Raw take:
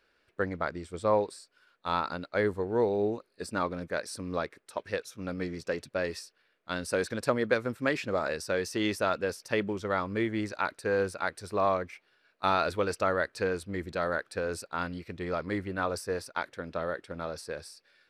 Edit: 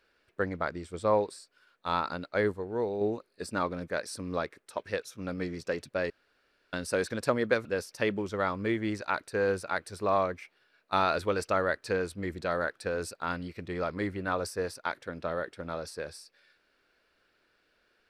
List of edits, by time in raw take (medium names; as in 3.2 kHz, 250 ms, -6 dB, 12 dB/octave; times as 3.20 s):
2.52–3.01 s: gain -4.5 dB
6.10–6.73 s: room tone
7.65–9.16 s: delete